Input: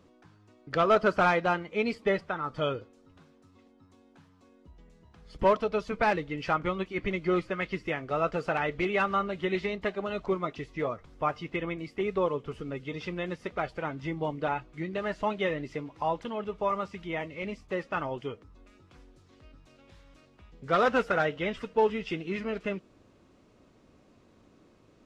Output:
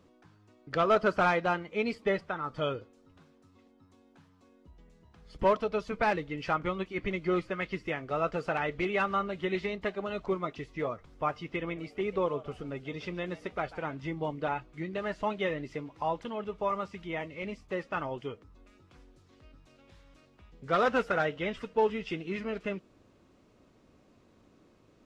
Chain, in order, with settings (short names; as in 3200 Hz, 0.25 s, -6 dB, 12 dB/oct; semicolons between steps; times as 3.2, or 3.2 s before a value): 11.35–13.97 frequency-shifting echo 0.142 s, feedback 31%, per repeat +120 Hz, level -18 dB; gain -2 dB